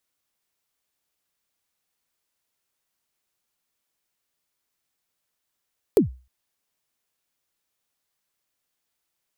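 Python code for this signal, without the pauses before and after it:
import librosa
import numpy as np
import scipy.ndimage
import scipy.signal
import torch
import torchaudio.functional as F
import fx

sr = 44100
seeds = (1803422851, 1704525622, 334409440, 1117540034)

y = fx.drum_kick(sr, seeds[0], length_s=0.31, level_db=-9.0, start_hz=480.0, end_hz=63.0, sweep_ms=123.0, decay_s=0.33, click=True)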